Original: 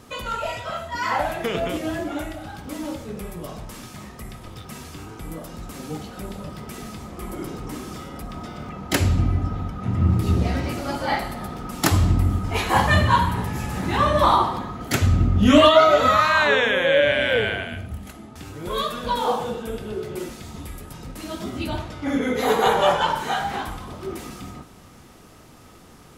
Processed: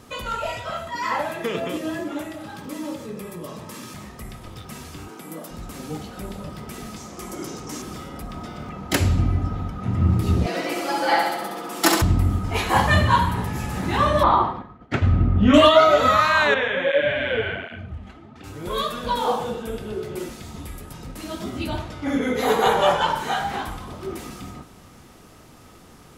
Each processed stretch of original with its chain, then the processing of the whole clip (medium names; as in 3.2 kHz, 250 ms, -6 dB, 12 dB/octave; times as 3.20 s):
0.87–3.94 s: high-pass 130 Hz + comb of notches 740 Hz + upward compressor, threshold -30 dBFS
5.08–5.51 s: high-pass 180 Hz 24 dB/octave + treble shelf 9.8 kHz +5.5 dB
6.96–7.82 s: high-pass 160 Hz 6 dB/octave + peaking EQ 6.2 kHz +12 dB 0.74 oct
10.46–12.02 s: high-pass 270 Hz 24 dB/octave + comb 6 ms, depth 95% + flutter echo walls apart 11.6 m, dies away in 0.88 s
14.23–15.54 s: low-pass 2.4 kHz + expander -24 dBFS
16.54–18.44 s: low-pass 3.3 kHz + doubling 22 ms -12 dB + cancelling through-zero flanger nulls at 1.3 Hz, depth 7.2 ms
whole clip: none